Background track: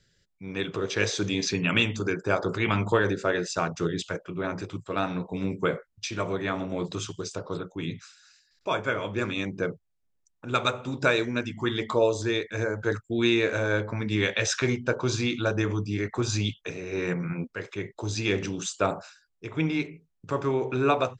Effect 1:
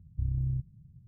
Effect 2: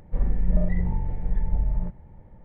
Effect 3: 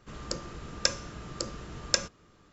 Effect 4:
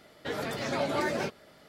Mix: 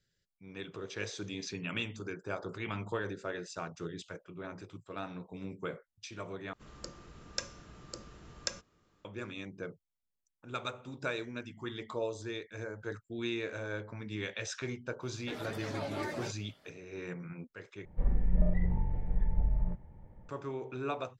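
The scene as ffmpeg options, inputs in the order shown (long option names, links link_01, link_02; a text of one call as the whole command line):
ffmpeg -i bed.wav -i cue0.wav -i cue1.wav -i cue2.wav -i cue3.wav -filter_complex "[0:a]volume=-13dB,asplit=3[link_01][link_02][link_03];[link_01]atrim=end=6.534[link_04];[3:a]atrim=end=2.52,asetpts=PTS-STARTPTS,volume=-10.5dB[link_05];[link_02]atrim=start=9.046:end=17.854[link_06];[2:a]atrim=end=2.44,asetpts=PTS-STARTPTS,volume=-5.5dB[link_07];[link_03]atrim=start=20.286[link_08];[4:a]atrim=end=1.68,asetpts=PTS-STARTPTS,volume=-9dB,afade=type=in:duration=0.004:curve=hsin,afade=type=out:start_time=1.676:duration=0.004:curve=hsin,adelay=15020[link_09];[link_04][link_05]acrossfade=duration=0.004:curve1=hsin:curve2=hsin[link_10];[link_10][link_06]acrossfade=duration=0.004:curve1=hsin:curve2=hsin[link_11];[link_11][link_07]acrossfade=duration=0.004:curve1=hsin:curve2=hsin[link_12];[link_12][link_08]acrossfade=duration=0.004:curve1=hsin:curve2=hsin[link_13];[link_13][link_09]amix=inputs=2:normalize=0" out.wav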